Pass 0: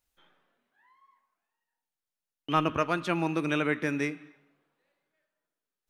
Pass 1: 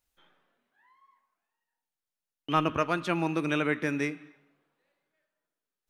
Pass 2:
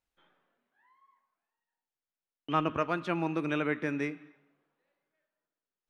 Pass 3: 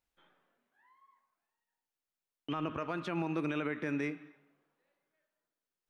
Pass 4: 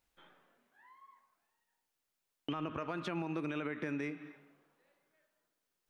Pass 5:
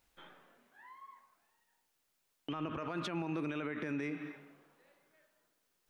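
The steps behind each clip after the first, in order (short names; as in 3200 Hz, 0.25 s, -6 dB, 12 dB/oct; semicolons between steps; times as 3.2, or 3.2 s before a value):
nothing audible
LPF 2600 Hz 6 dB/oct; low shelf 72 Hz -6.5 dB; gain -2 dB
limiter -25 dBFS, peak gain reduction 11.5 dB
compressor 4:1, threshold -42 dBFS, peak gain reduction 10.5 dB; gain +6 dB
limiter -35.5 dBFS, peak gain reduction 10 dB; gain +6 dB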